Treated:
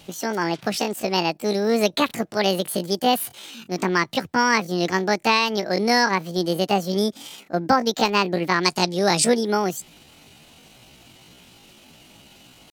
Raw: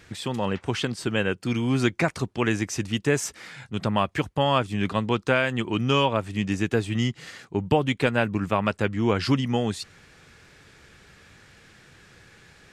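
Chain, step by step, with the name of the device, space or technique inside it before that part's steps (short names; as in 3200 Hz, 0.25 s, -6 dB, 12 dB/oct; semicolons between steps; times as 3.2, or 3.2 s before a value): chipmunk voice (pitch shift +9.5 st); 8.63–9.25 band shelf 6700 Hz +10 dB; gain +3 dB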